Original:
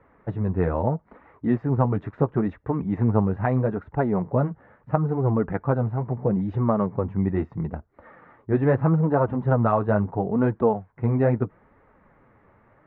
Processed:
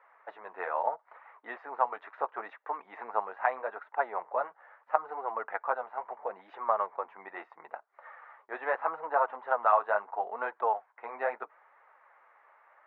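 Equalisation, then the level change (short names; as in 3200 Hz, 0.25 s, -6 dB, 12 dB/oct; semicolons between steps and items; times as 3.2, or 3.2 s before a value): HPF 730 Hz 24 dB/oct; air absorption 130 m; +2.0 dB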